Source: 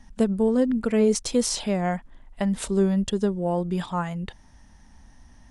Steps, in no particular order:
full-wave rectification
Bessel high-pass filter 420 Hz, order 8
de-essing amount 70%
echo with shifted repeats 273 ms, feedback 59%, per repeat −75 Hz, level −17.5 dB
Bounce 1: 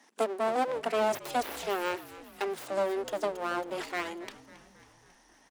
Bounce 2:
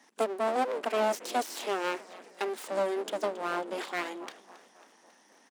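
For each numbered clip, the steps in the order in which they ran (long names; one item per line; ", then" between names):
full-wave rectification, then Bessel high-pass filter, then echo with shifted repeats, then de-essing
de-essing, then echo with shifted repeats, then full-wave rectification, then Bessel high-pass filter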